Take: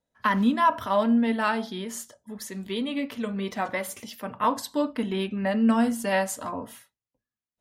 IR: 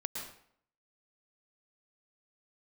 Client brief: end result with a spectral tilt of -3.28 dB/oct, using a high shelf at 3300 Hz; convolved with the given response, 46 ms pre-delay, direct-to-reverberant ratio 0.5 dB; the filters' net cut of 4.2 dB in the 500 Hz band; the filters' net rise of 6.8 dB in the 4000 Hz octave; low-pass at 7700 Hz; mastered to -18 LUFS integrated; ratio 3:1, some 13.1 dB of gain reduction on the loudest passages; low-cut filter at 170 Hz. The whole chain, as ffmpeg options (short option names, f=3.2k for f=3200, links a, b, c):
-filter_complex "[0:a]highpass=170,lowpass=7.7k,equalizer=f=500:t=o:g=-5.5,highshelf=f=3.3k:g=4,equalizer=f=4k:t=o:g=6.5,acompressor=threshold=-35dB:ratio=3,asplit=2[a][b];[1:a]atrim=start_sample=2205,adelay=46[c];[b][c]afir=irnorm=-1:irlink=0,volume=-1.5dB[d];[a][d]amix=inputs=2:normalize=0,volume=15.5dB"